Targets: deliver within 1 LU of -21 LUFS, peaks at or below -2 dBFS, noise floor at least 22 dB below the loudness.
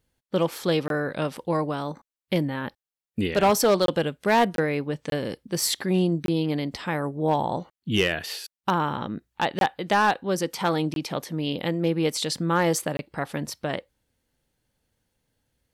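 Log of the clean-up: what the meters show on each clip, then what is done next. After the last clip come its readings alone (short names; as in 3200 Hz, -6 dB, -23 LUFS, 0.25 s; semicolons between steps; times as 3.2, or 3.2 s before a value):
clipped 0.3%; flat tops at -13.5 dBFS; dropouts 8; longest dropout 22 ms; loudness -25.5 LUFS; peak -13.5 dBFS; loudness target -21.0 LUFS
-> clip repair -13.5 dBFS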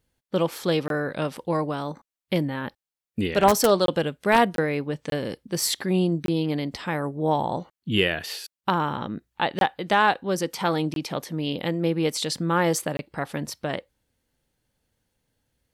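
clipped 0.0%; dropouts 8; longest dropout 22 ms
-> interpolate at 0.88/3.86/4.56/5.1/6.26/9.59/10.94/12.97, 22 ms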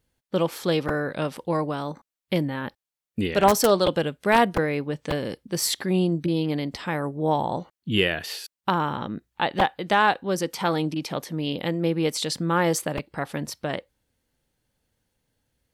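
dropouts 0; loudness -25.0 LUFS; peak -4.5 dBFS; loudness target -21.0 LUFS
-> gain +4 dB; limiter -2 dBFS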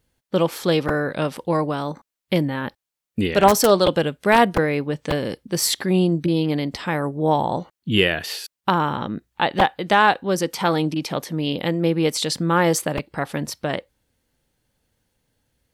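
loudness -21.0 LUFS; peak -2.0 dBFS; noise floor -86 dBFS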